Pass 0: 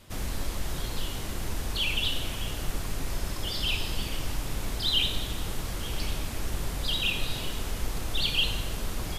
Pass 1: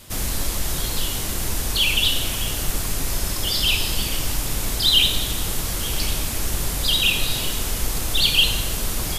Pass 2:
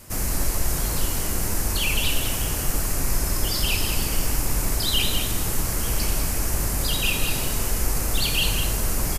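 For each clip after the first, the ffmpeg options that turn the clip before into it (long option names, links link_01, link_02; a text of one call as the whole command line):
ffmpeg -i in.wav -af "highshelf=frequency=4700:gain=11,volume=6dB" out.wav
ffmpeg -i in.wav -filter_complex "[0:a]equalizer=frequency=3500:width=2.3:gain=-12,asplit=2[link_01][link_02];[link_02]adelay=198.3,volume=-6dB,highshelf=frequency=4000:gain=-4.46[link_03];[link_01][link_03]amix=inputs=2:normalize=0" out.wav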